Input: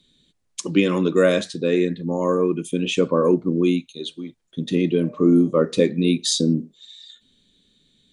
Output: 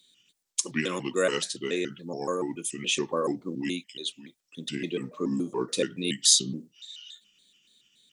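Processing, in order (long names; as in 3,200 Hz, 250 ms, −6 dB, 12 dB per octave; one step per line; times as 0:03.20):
pitch shifter gated in a rhythm −4 semitones, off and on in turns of 142 ms
RIAA equalisation recording
level −6 dB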